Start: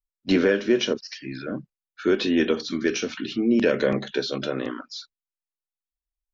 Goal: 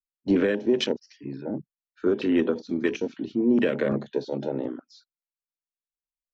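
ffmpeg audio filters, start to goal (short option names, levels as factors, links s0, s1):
-filter_complex "[0:a]afwtdn=0.0355,acrossover=split=300|3000[s0][s1][s2];[s1]acompressor=threshold=0.0708:ratio=6[s3];[s0][s3][s2]amix=inputs=3:normalize=0,asetrate=45392,aresample=44100,atempo=0.971532"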